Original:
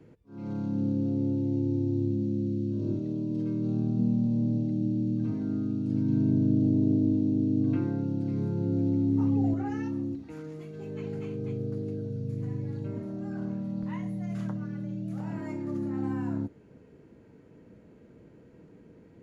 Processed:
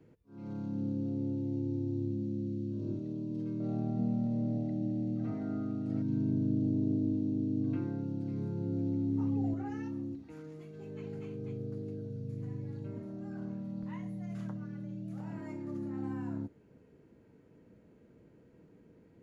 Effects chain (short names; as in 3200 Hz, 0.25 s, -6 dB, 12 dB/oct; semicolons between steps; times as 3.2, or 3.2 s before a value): 3.6–6.02 small resonant body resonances 710/1300/1900 Hz, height 17 dB, ringing for 25 ms; gain -6.5 dB